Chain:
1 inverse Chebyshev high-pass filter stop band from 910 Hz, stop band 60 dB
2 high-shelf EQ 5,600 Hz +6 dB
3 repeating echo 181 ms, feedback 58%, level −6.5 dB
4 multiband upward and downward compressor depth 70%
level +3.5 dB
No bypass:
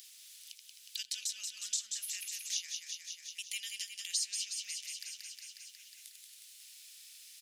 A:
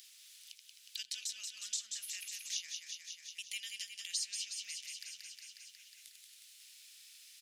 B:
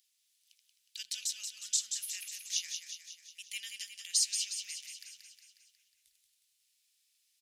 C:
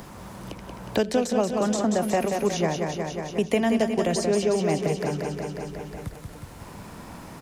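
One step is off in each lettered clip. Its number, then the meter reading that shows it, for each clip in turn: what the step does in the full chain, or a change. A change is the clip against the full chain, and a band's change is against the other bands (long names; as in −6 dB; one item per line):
2, change in integrated loudness −3.0 LU
4, change in crest factor +2.5 dB
1, change in crest factor −6.5 dB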